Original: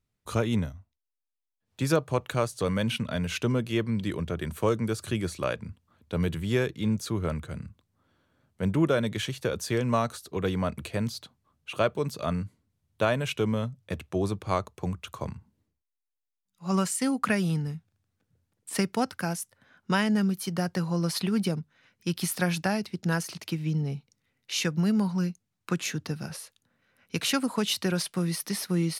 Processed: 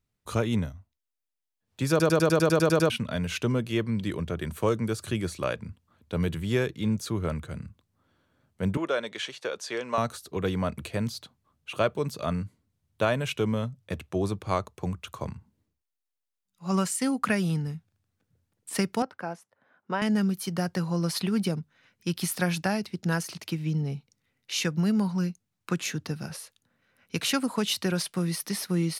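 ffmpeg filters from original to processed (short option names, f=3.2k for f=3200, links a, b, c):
-filter_complex "[0:a]asettb=1/sr,asplit=3[a][b][c];[a]atrim=end=8.774[d];[b]atrim=start=8.77:end=9.98,asetpts=PTS-STARTPTS,afade=t=in:d=0.004:c=qsin,afade=t=out:st=1.206:d=0.004:c=qsin,highpass=480,lowpass=6.6k[e];[c]atrim=start=9.976[f];[d][e]acrossfade=d=0.004:c1=hsin:c2=qsin[g];[g][f]acrossfade=d=0.004:c1=qsin:c2=hsin,asettb=1/sr,asplit=3[h][i][j];[h]atrim=end=19.024[k];[i]atrim=start=19.02:end=20.02,asetpts=PTS-STARTPTS,afade=t=in:d=0.004:c=qsin,afade=t=out:st=0.996:d=0.004:c=qsin,bandpass=f=680:t=q:w=0.81[l];[j]atrim=start=20.016[m];[k][l]acrossfade=d=0.004:c1=hsin:c2=qsin[n];[n][m]acrossfade=d=0.004:c1=qsin:c2=hsin,asplit=11[o][p][q][r][s][t][u][v][w][x][y];[o]atrim=end=2.002[z];[p]atrim=start=1.898:end=2.002[aa];[q]atrim=start=1.898:end=2.002[ab];[r]atrim=start=1.898:end=2.002[ac];[s]atrim=start=1.898:end=2.002[ad];[t]atrim=start=1.898:end=2.002[ae];[u]atrim=start=1.898:end=2.002[af];[v]atrim=start=1.898:end=2.002[ag];[w]atrim=start=1.898:end=2.002[ah];[x]atrim=start=1.898:end=2.002[ai];[y]atrim=start=2.898[aj];[z][aa]acrossfade=d=0.004:c1=hsin:c2=hsin[ak];[ak][ab]acrossfade=d=0.004:c1=hsin:c2=hsin[al];[al][ac]acrossfade=d=0.004:c1=hsin:c2=hsin[am];[am][ad]acrossfade=d=0.004:c1=hsin:c2=hsin[an];[an][ae]acrossfade=d=0.004:c1=hsin:c2=hsin[ao];[ao][af]acrossfade=d=0.004:c1=hsin:c2=hsin[ap];[ap][ag]acrossfade=d=0.004:c1=hsin:c2=hsin[aq];[aq][ah]acrossfade=d=0.004:c1=hsin:c2=hsin[ar];[ar][ai]acrossfade=d=0.004:c1=hsin:c2=hsin[as];[as][aj]acrossfade=d=0.004:c1=hsin:c2=hsin"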